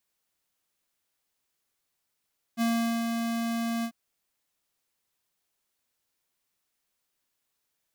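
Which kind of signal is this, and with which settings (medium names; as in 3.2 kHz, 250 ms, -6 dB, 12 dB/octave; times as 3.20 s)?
ADSR square 231 Hz, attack 44 ms, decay 410 ms, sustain -4.5 dB, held 1.27 s, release 73 ms -25 dBFS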